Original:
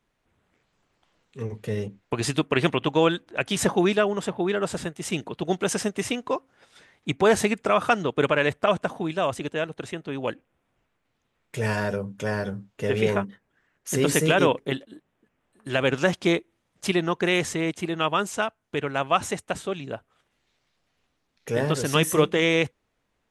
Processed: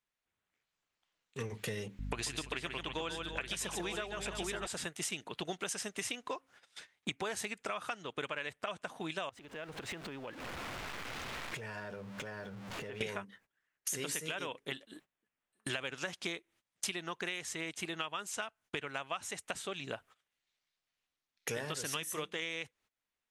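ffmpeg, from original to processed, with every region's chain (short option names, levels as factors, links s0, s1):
-filter_complex "[0:a]asettb=1/sr,asplit=3[s0][s1][s2];[s0]atrim=end=1.994[s3];[s1]atrim=start=1.99:end=4.67,asetpts=PTS-STARTPTS,afade=t=in:d=0.004:c=qsin,afade=t=out:st=2.676:d=0.004:c=qsin,aeval=exprs='val(0)+0.0224*(sin(2*PI*50*n/s)+sin(2*PI*2*50*n/s)/2+sin(2*PI*3*50*n/s)/3+sin(2*PI*4*50*n/s)/4+sin(2*PI*5*50*n/s)/5)':c=same,aecho=1:1:140|337|874:0.447|0.168|0.316,atrim=end_sample=118188[s4];[s2]atrim=start=4.666[s5];[s3][s4]acrossfade=d=0.004:c1=hsin:c2=qsin[s6];[s6][s5]acrossfade=d=0.004:c1=qsin:c2=hsin,asettb=1/sr,asplit=3[s7][s8][s9];[s7]atrim=end=9.294[s10];[s8]atrim=start=9.29:end=13.01,asetpts=PTS-STARTPTS,afade=t=in:d=0.004:c=qsin,afade=t=out:st=3.716:d=0.004:c=qsin,aeval=exprs='val(0)+0.5*0.015*sgn(val(0))':c=same,lowpass=f=1500:p=1,acompressor=threshold=0.00891:ratio=8:attack=3.2:release=140:knee=1:detection=peak[s11];[s9]atrim=start=13.006[s12];[s10][s11]acrossfade=d=0.004:c1=hsin:c2=qsin[s13];[s13][s12]acrossfade=d=0.004:c1=qsin:c2=hsin,agate=range=0.0891:threshold=0.00282:ratio=16:detection=peak,tiltshelf=f=970:g=-7,acompressor=threshold=0.0112:ratio=12,volume=1.5"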